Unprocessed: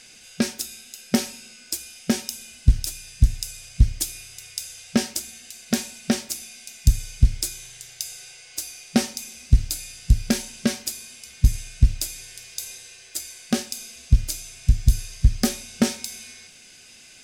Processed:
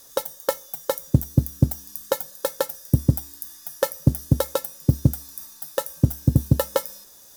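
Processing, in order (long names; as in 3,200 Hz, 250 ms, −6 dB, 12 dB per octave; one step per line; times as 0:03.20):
wrong playback speed 33 rpm record played at 78 rpm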